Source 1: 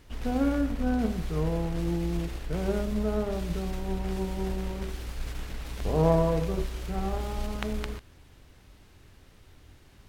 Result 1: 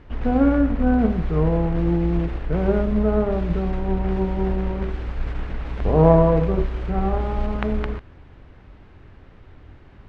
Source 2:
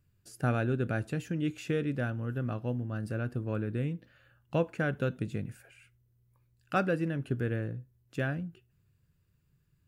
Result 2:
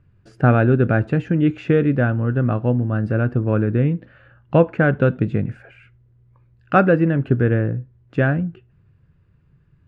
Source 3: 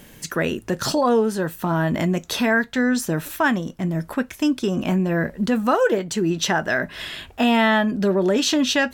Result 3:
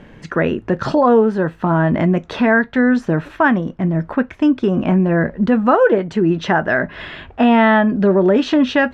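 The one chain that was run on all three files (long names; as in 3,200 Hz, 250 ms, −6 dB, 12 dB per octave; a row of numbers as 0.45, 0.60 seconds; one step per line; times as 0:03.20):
low-pass filter 1,900 Hz 12 dB per octave
normalise the peak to −2 dBFS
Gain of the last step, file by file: +8.5, +14.5, +6.0 decibels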